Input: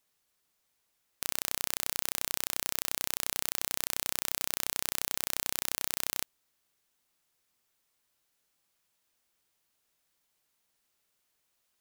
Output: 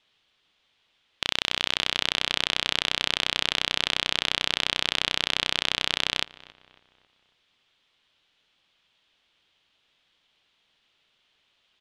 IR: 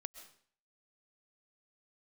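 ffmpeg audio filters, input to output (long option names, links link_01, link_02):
-filter_complex "[0:a]lowpass=frequency=3300:width_type=q:width=3.3,asplit=2[link_01][link_02];[link_02]adelay=274,lowpass=frequency=2400:poles=1,volume=-20dB,asplit=2[link_03][link_04];[link_04]adelay=274,lowpass=frequency=2400:poles=1,volume=0.49,asplit=2[link_05][link_06];[link_06]adelay=274,lowpass=frequency=2400:poles=1,volume=0.49,asplit=2[link_07][link_08];[link_08]adelay=274,lowpass=frequency=2400:poles=1,volume=0.49[link_09];[link_01][link_03][link_05][link_07][link_09]amix=inputs=5:normalize=0,volume=8.5dB"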